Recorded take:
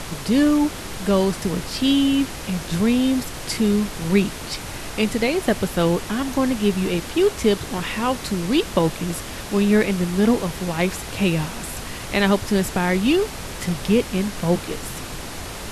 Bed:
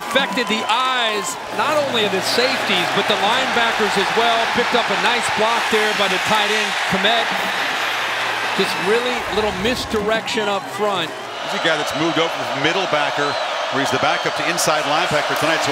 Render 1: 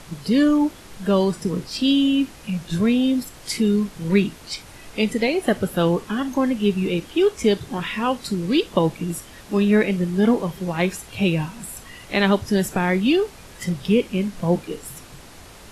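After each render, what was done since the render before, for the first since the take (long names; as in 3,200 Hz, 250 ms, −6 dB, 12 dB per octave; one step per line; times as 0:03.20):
noise reduction from a noise print 11 dB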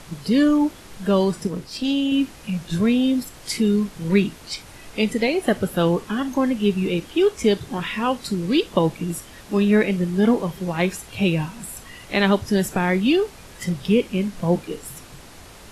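0:01.47–0:02.12: tube saturation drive 12 dB, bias 0.65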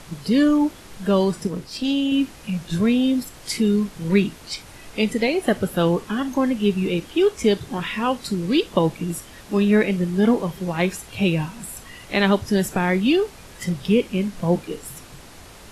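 no processing that can be heard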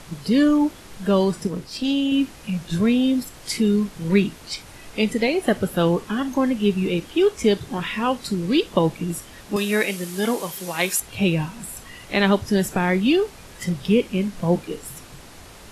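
0:09.56–0:11.00: RIAA equalisation recording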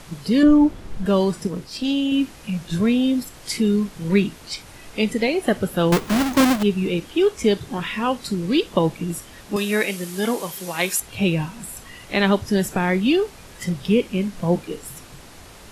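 0:00.43–0:01.06: spectral tilt −2.5 dB per octave
0:05.92–0:06.63: each half-wave held at its own peak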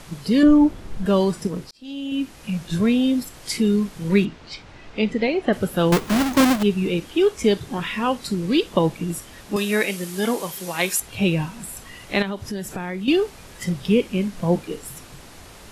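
0:01.71–0:02.51: fade in
0:04.25–0:05.53: high-frequency loss of the air 150 metres
0:12.22–0:13.08: downward compressor 2.5 to 1, threshold −29 dBFS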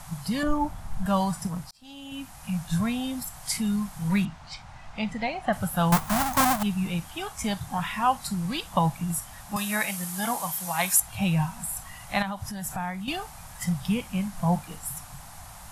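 drawn EQ curve 160 Hz 0 dB, 410 Hz −24 dB, 750 Hz +4 dB, 2,700 Hz −7 dB, 4,500 Hz −5 dB, 9,200 Hz +3 dB, 16,000 Hz +5 dB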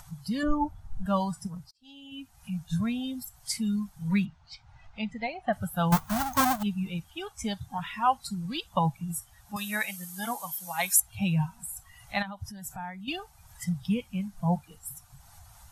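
spectral dynamics exaggerated over time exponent 1.5
upward compression, threshold −44 dBFS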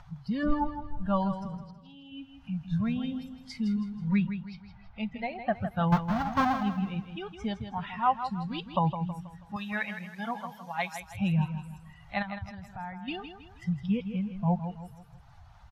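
high-frequency loss of the air 260 metres
repeating echo 161 ms, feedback 40%, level −9.5 dB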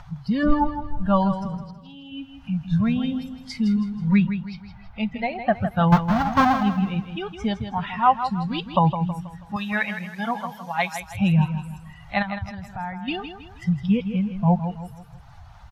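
level +8 dB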